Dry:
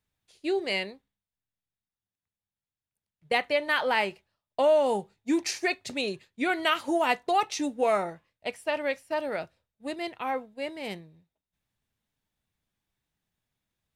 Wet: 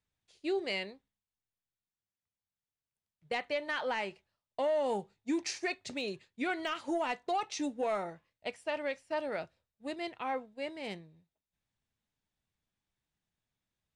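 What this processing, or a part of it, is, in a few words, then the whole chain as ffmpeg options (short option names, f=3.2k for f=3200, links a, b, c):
soft clipper into limiter: -filter_complex "[0:a]asoftclip=type=tanh:threshold=-15dB,alimiter=limit=-20.5dB:level=0:latency=1:release=253,lowpass=f=8.8k:w=0.5412,lowpass=f=8.8k:w=1.3066,asettb=1/sr,asplit=3[a][b][c];[a]atrim=end=5.954[d];[b]atrim=start=5.95:end=6.97,asetpts=PTS-STARTPTS,afade=t=in:d=0.004:c=qsin,afade=t=out:st=1.016:d=0.004:c=qsin,deesser=0.9[e];[c]atrim=start=6.966[f];[d][e]acrossfade=d=0.004:c1=hsin:c2=qsin[g];[g][f]acrossfade=d=0.004:c1=qsin:c2=hsin,volume=-4.5dB"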